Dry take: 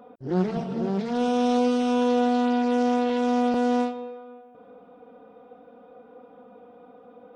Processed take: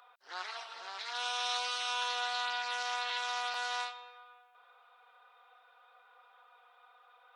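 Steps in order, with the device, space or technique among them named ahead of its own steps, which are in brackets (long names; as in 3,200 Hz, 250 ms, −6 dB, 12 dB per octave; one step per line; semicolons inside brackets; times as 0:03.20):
headphones lying on a table (high-pass filter 1,100 Hz 24 dB per octave; parametric band 4,000 Hz +7 dB 0.35 octaves)
level +1.5 dB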